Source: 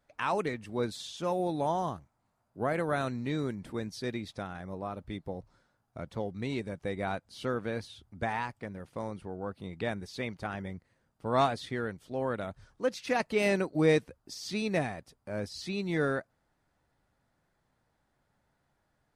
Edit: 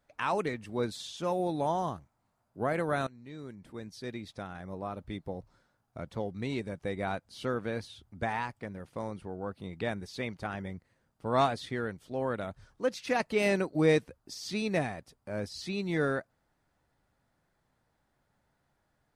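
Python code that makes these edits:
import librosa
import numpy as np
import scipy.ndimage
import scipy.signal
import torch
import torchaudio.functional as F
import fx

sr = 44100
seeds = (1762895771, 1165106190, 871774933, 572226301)

y = fx.edit(x, sr, fx.fade_in_from(start_s=3.07, length_s=1.82, floor_db=-20.0), tone=tone)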